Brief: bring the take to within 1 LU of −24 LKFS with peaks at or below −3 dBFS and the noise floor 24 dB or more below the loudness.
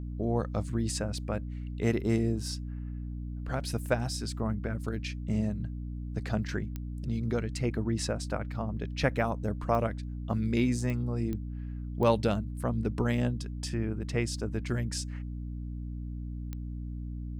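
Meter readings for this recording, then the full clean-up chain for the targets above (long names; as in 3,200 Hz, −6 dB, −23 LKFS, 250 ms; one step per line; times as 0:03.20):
number of clicks 6; mains hum 60 Hz; hum harmonics up to 300 Hz; level of the hum −34 dBFS; integrated loudness −32.5 LKFS; sample peak −12.0 dBFS; target loudness −24.0 LKFS
→ click removal
mains-hum notches 60/120/180/240/300 Hz
level +8.5 dB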